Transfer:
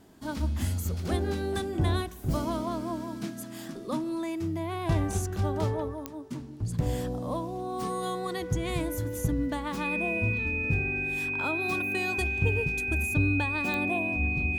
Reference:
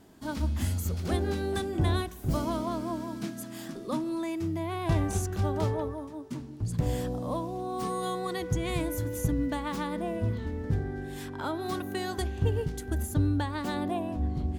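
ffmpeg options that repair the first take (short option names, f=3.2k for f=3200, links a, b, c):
-af "adeclick=t=4,bandreject=f=2.5k:w=30"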